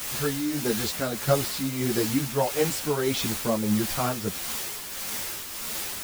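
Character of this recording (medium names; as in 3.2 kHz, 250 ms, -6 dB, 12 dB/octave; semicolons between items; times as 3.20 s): a quantiser's noise floor 6-bit, dither triangular; tremolo triangle 1.6 Hz, depth 55%; a shimmering, thickened sound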